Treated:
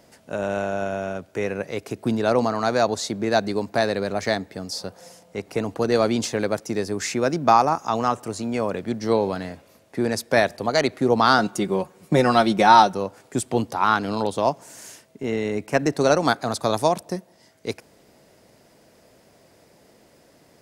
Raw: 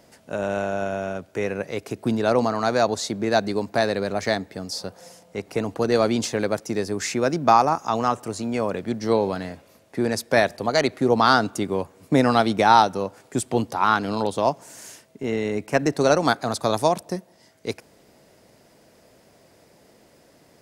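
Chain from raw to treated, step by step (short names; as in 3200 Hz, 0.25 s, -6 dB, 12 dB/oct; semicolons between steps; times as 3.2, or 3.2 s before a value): 11.38–12.94 comb 5.5 ms, depth 64%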